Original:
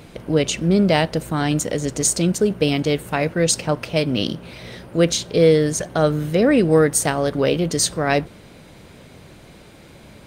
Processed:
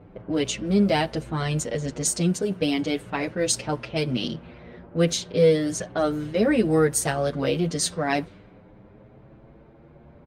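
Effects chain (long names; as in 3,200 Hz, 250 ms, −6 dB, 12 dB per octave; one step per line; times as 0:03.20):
low-pass that shuts in the quiet parts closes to 980 Hz, open at −14.5 dBFS
barber-pole flanger 7.7 ms +0.36 Hz
level −2 dB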